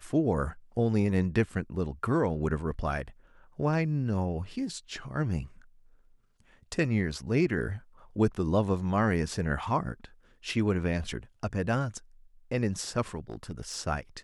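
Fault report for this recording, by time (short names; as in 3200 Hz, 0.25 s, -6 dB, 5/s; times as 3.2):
13.3–13.77 clipped -30.5 dBFS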